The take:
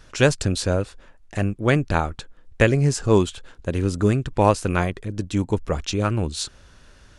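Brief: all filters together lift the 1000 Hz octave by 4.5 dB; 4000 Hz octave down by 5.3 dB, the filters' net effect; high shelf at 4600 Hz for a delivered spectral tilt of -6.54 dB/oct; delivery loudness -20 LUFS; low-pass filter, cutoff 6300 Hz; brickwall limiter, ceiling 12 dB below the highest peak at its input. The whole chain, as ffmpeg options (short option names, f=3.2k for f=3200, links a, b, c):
-af "lowpass=6.3k,equalizer=f=1k:t=o:g=6,equalizer=f=4k:t=o:g=-4,highshelf=f=4.6k:g=-4.5,volume=6dB,alimiter=limit=-6.5dB:level=0:latency=1"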